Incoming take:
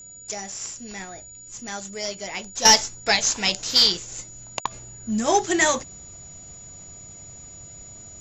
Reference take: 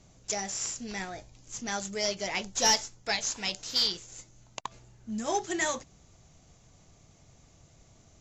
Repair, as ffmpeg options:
-af "bandreject=f=6.9k:w=30,asetnsamples=n=441:p=0,asendcmd='2.65 volume volume -10dB',volume=0dB"

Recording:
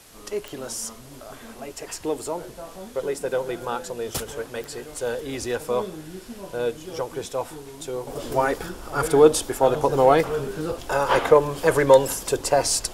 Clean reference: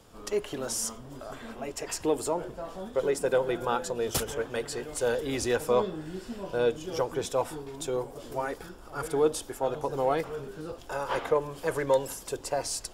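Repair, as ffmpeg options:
-af "adeclick=t=4,afwtdn=0.0035,asetnsamples=n=441:p=0,asendcmd='8.07 volume volume -10.5dB',volume=0dB"

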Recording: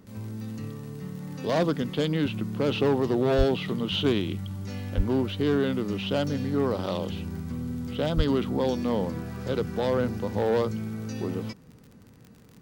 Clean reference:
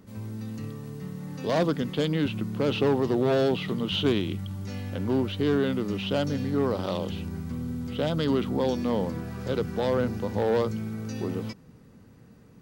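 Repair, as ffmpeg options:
-filter_complex "[0:a]adeclick=t=4,asplit=3[a][b][c];[a]afade=t=out:st=3.37:d=0.02[d];[b]highpass=f=140:w=0.5412,highpass=f=140:w=1.3066,afade=t=in:st=3.37:d=0.02,afade=t=out:st=3.49:d=0.02[e];[c]afade=t=in:st=3.49:d=0.02[f];[d][e][f]amix=inputs=3:normalize=0,asplit=3[g][h][i];[g]afade=t=out:st=4.96:d=0.02[j];[h]highpass=f=140:w=0.5412,highpass=f=140:w=1.3066,afade=t=in:st=4.96:d=0.02,afade=t=out:st=5.08:d=0.02[k];[i]afade=t=in:st=5.08:d=0.02[l];[j][k][l]amix=inputs=3:normalize=0,asplit=3[m][n][o];[m]afade=t=out:st=8.16:d=0.02[p];[n]highpass=f=140:w=0.5412,highpass=f=140:w=1.3066,afade=t=in:st=8.16:d=0.02,afade=t=out:st=8.28:d=0.02[q];[o]afade=t=in:st=8.28:d=0.02[r];[p][q][r]amix=inputs=3:normalize=0"

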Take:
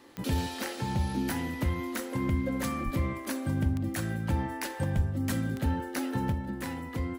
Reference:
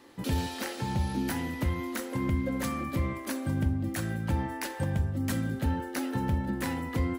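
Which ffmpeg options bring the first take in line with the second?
-filter_complex "[0:a]adeclick=t=4,asplit=3[a][b][c];[a]afade=t=out:st=2.84:d=0.02[d];[b]highpass=f=140:w=0.5412,highpass=f=140:w=1.3066,afade=t=in:st=2.84:d=0.02,afade=t=out:st=2.96:d=0.02[e];[c]afade=t=in:st=2.96:d=0.02[f];[d][e][f]amix=inputs=3:normalize=0,asplit=3[g][h][i];[g]afade=t=out:st=4.95:d=0.02[j];[h]highpass=f=140:w=0.5412,highpass=f=140:w=1.3066,afade=t=in:st=4.95:d=0.02,afade=t=out:st=5.07:d=0.02[k];[i]afade=t=in:st=5.07:d=0.02[l];[j][k][l]amix=inputs=3:normalize=0,asetnsamples=n=441:p=0,asendcmd='6.32 volume volume 4dB',volume=0dB"

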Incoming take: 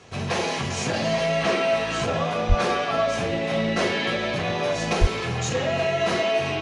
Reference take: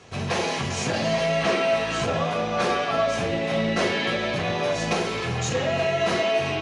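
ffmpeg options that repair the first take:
-filter_complex "[0:a]asplit=3[a][b][c];[a]afade=t=out:st=2.48:d=0.02[d];[b]highpass=f=140:w=0.5412,highpass=f=140:w=1.3066,afade=t=in:st=2.48:d=0.02,afade=t=out:st=2.6:d=0.02[e];[c]afade=t=in:st=2.6:d=0.02[f];[d][e][f]amix=inputs=3:normalize=0,asplit=3[g][h][i];[g]afade=t=out:st=5:d=0.02[j];[h]highpass=f=140:w=0.5412,highpass=f=140:w=1.3066,afade=t=in:st=5:d=0.02,afade=t=out:st=5.12:d=0.02[k];[i]afade=t=in:st=5.12:d=0.02[l];[j][k][l]amix=inputs=3:normalize=0"

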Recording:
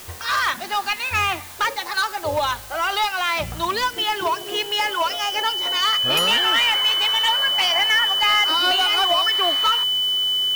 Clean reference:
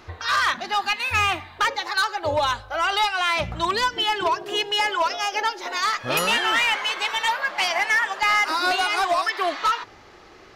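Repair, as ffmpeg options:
-af "bandreject=f=3k:w=30,afwtdn=0.01"

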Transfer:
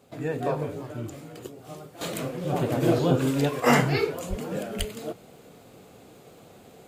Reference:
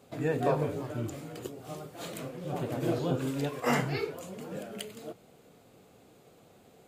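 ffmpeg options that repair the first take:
-filter_complex "[0:a]adeclick=t=4,asplit=3[a][b][c];[a]afade=t=out:st=4.29:d=0.02[d];[b]highpass=f=140:w=0.5412,highpass=f=140:w=1.3066,afade=t=in:st=4.29:d=0.02,afade=t=out:st=4.41:d=0.02[e];[c]afade=t=in:st=4.41:d=0.02[f];[d][e][f]amix=inputs=3:normalize=0,asplit=3[g][h][i];[g]afade=t=out:st=4.78:d=0.02[j];[h]highpass=f=140:w=0.5412,highpass=f=140:w=1.3066,afade=t=in:st=4.78:d=0.02,afade=t=out:st=4.9:d=0.02[k];[i]afade=t=in:st=4.9:d=0.02[l];[j][k][l]amix=inputs=3:normalize=0,asetnsamples=n=441:p=0,asendcmd='2.01 volume volume -8dB',volume=0dB"

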